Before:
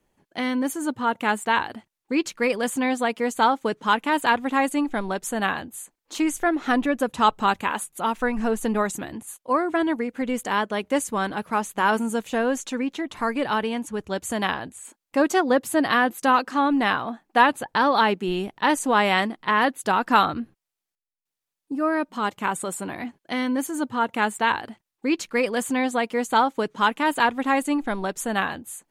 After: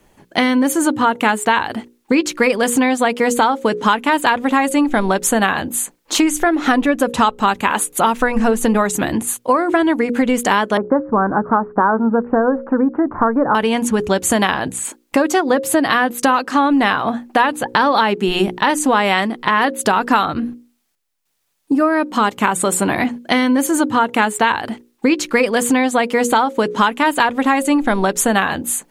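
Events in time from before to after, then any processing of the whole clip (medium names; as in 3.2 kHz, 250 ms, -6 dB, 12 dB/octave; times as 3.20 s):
10.77–13.55 s: steep low-pass 1.5 kHz 48 dB/octave
whole clip: hum notches 60/120/180/240/300/360/420/480/540 Hz; compression 6:1, threshold -29 dBFS; loudness maximiser +18 dB; trim -1 dB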